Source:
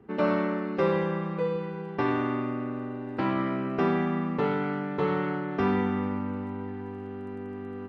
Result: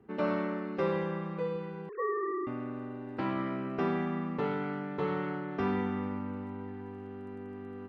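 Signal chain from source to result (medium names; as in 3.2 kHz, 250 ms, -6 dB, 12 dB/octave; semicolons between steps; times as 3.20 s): 1.89–2.47 s: formants replaced by sine waves; trim -5.5 dB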